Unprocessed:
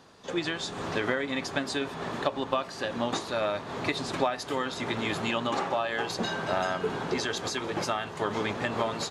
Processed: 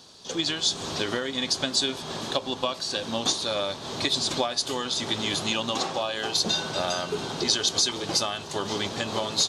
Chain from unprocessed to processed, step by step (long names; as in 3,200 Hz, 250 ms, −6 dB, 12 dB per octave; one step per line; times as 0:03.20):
wrong playback speed 25 fps video run at 24 fps
high shelf with overshoot 2,900 Hz +11 dB, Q 1.5